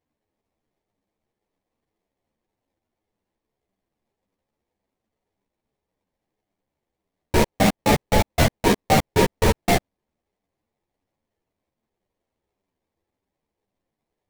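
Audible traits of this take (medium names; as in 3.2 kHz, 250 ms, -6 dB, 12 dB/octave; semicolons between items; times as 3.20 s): aliases and images of a low sample rate 1.4 kHz, jitter 20%; a shimmering, thickened sound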